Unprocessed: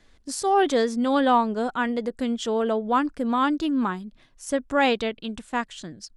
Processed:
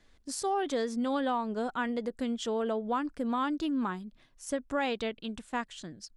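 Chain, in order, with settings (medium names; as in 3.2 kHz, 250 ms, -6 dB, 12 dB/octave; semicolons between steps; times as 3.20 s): compression, threshold -21 dBFS, peak gain reduction 7 dB; trim -5.5 dB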